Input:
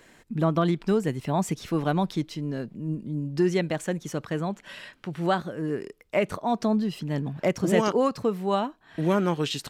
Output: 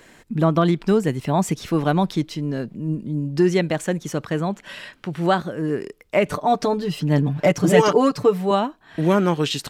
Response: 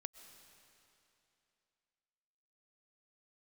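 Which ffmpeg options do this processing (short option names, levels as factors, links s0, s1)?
-filter_complex "[0:a]asettb=1/sr,asplit=3[s0][s1][s2];[s0]atrim=end=6.254[s3];[s1]atrim=start=6.25:end=8.51,asetpts=PTS-STARTPTS,afade=t=in:d=0.004:c=qsin,afade=t=out:st=2.256:d=0.004:c=qsin,aecho=1:1:6.8:0.79,atrim=end_sample=99666[s4];[s2]atrim=start=8.506[s5];[s3][s4]acrossfade=d=0.004:c1=hsin:c2=qsin[s6];[s6][s5]acrossfade=d=0.004:c1=qsin:c2=hsin,volume=1.88"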